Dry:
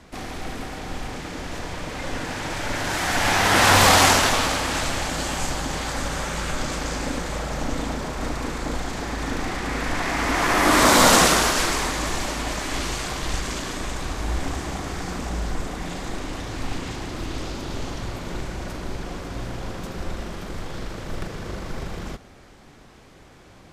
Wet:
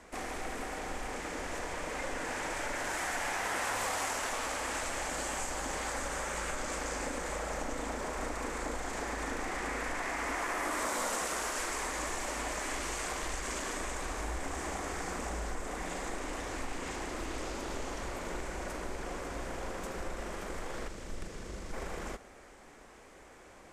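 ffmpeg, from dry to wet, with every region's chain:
ffmpeg -i in.wav -filter_complex "[0:a]asettb=1/sr,asplit=3[link_01][link_02][link_03];[link_01]atrim=end=20.884[link_04];[link_02]atrim=start=20.88:end=21.73,asetpts=PTS-STARTPTS,afade=type=in:duration=0.004:curve=qsin,afade=type=out:start_time=0.846:duration=0.004:curve=qsin,highshelf=frequency=12000:gain=-11,acrossover=split=300|3000[link_05][link_06][link_07];[link_06]acompressor=threshold=-52dB:ratio=2:attack=3.2:release=140:knee=2.83:detection=peak[link_08];[link_05][link_08][link_07]amix=inputs=3:normalize=0[link_09];[link_03]atrim=start=21.726[link_10];[link_04][link_09]acrossfade=duration=0.004:curve1=hsin:curve2=qsin[link_11];[link_11][link_10]acrossfade=duration=0.004:curve1=qsin:curve2=hsin,equalizer=frequency=125:width_type=o:width=1:gain=-11,equalizer=frequency=500:width_type=o:width=1:gain=5,equalizer=frequency=1000:width_type=o:width=1:gain=3,equalizer=frequency=2000:width_type=o:width=1:gain=5,equalizer=frequency=4000:width_type=o:width=1:gain=-5,equalizer=frequency=8000:width_type=o:width=1:gain=8,acompressor=threshold=-25dB:ratio=6,volume=-7.5dB" out.wav

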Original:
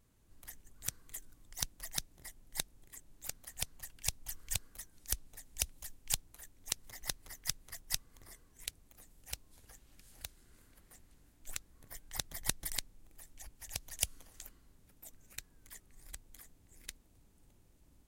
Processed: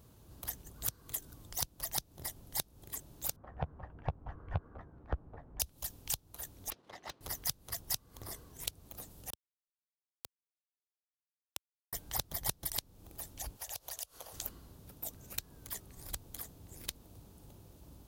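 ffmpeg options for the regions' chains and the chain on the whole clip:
ffmpeg -i in.wav -filter_complex "[0:a]asettb=1/sr,asplit=3[link_01][link_02][link_03];[link_01]atrim=end=3.364[link_04];[link_02]atrim=start=3.36:end=5.6,asetpts=PTS-STARTPTS,afade=type=in:duration=0.004:curve=qsin,afade=type=out:start_time=2.236:duration=0.004:curve=qsin,lowpass=frequency=1500:width=0.5412,lowpass=frequency=1500:width=1.3066,asplit=2[link_05][link_06];[link_06]adelay=13,volume=-9.5dB[link_07];[link_05][link_07]amix=inputs=2:normalize=0,atrim=end_sample=98784[link_08];[link_03]atrim=start=5.596[link_09];[link_04][link_08]acrossfade=duration=0.004:curve1=hsin:curve2=qsin[link_10];[link_10][link_09]acrossfade=duration=0.004:curve1=qsin:curve2=hsin,asettb=1/sr,asplit=3[link_11][link_12][link_13];[link_11]atrim=end=6.704[link_14];[link_12]atrim=start=6.7:end=7.21,asetpts=PTS-STARTPTS,afade=type=in:duration=0.004:curve=qsin,afade=type=out:start_time=0.506:duration=0.004:curve=qsin,agate=range=-33dB:threshold=-55dB:ratio=3:release=100:detection=peak,highpass=280,lowpass=2800,aeval=exprs='(tanh(158*val(0)+0.6)-tanh(0.6))/158':channel_layout=same[link_15];[link_13]atrim=start=7.206[link_16];[link_14][link_15]acrossfade=duration=0.004:curve1=hsin:curve2=qsin[link_17];[link_17][link_16]acrossfade=duration=0.004:curve1=qsin:curve2=hsin,asettb=1/sr,asplit=3[link_18][link_19][link_20];[link_18]atrim=end=9.304[link_21];[link_19]atrim=start=9.3:end=11.93,asetpts=PTS-STARTPTS,afade=type=in:duration=0.004:curve=qsin,afade=type=out:start_time=2.626:duration=0.004:curve=qsin,acompressor=threshold=-58dB:ratio=1.5:attack=3.2:release=140:knee=1:detection=peak,acrusher=bits=4:mix=0:aa=0.5[link_22];[link_20]atrim=start=11.926[link_23];[link_21][link_22]acrossfade=duration=0.004:curve1=hsin:curve2=qsin[link_24];[link_24][link_23]acrossfade=duration=0.004:curve1=qsin:curve2=hsin,asettb=1/sr,asplit=3[link_25][link_26][link_27];[link_25]atrim=end=13.574[link_28];[link_26]atrim=start=13.57:end=14.33,asetpts=PTS-STARTPTS,afade=type=in:duration=0.004:curve=qsin,afade=type=out:start_time=0.756:duration=0.004:curve=qsin,lowshelf=frequency=380:width_type=q:width=1.5:gain=-12,acompressor=threshold=-48dB:ratio=12:attack=3.2:release=140:knee=1:detection=peak[link_29];[link_27]atrim=start=14.326[link_30];[link_28][link_29]acrossfade=duration=0.004:curve1=hsin:curve2=qsin[link_31];[link_31][link_30]acrossfade=duration=0.004:curve1=qsin:curve2=hsin,highpass=64,acompressor=threshold=-44dB:ratio=5,equalizer=frequency=250:width_type=o:width=1:gain=-4,equalizer=frequency=2000:width_type=o:width=1:gain=-11,equalizer=frequency=8000:width_type=o:width=1:gain=-8,volume=15dB" out.wav

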